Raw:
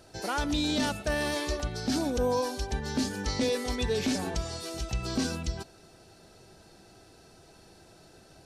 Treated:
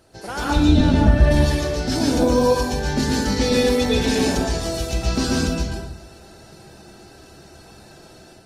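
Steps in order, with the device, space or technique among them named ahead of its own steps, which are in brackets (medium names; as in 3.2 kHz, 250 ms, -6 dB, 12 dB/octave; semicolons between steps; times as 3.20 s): 0.56–1.31 s: RIAA curve playback; speakerphone in a meeting room (reverberation RT60 0.75 s, pre-delay 111 ms, DRR -3 dB; level rider gain up to 5.5 dB; Opus 24 kbps 48 kHz)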